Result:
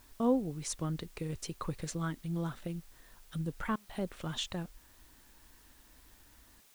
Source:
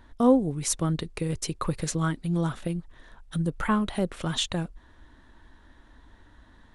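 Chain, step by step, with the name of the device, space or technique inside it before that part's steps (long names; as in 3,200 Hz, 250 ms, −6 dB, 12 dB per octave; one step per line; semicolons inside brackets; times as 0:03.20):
worn cassette (low-pass filter 8,900 Hz; tape wow and flutter; tape dropouts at 0:03.76/0:06.61, 132 ms −29 dB; white noise bed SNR 25 dB)
level −9 dB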